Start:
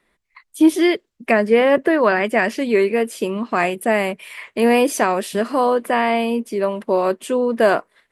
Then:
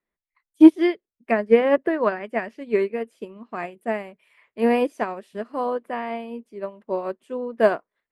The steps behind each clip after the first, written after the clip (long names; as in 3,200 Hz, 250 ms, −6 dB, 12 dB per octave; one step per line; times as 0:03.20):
high-shelf EQ 3,400 Hz −11.5 dB
expander for the loud parts 2.5 to 1, over −24 dBFS
level +4 dB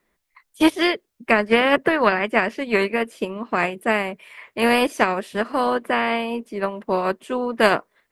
every bin compressed towards the loudest bin 2 to 1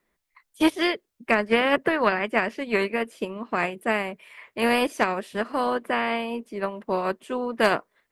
hard clipping −4 dBFS, distortion −35 dB
level −4 dB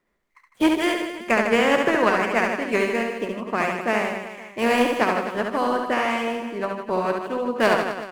running median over 9 samples
reverse bouncing-ball delay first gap 70 ms, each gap 1.2×, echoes 5
level +1 dB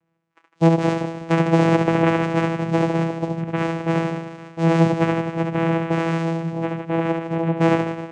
channel vocoder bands 4, saw 165 Hz
level +3 dB